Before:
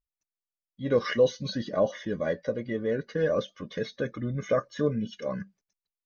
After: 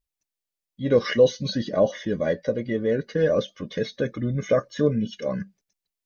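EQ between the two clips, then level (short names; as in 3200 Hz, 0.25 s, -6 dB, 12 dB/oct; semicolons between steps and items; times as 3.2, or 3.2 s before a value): bell 1200 Hz -5.5 dB 0.94 oct; +5.5 dB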